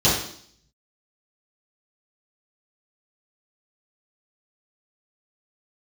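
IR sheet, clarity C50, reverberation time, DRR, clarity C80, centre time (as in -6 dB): 2.5 dB, 0.60 s, -10.0 dB, 7.0 dB, 48 ms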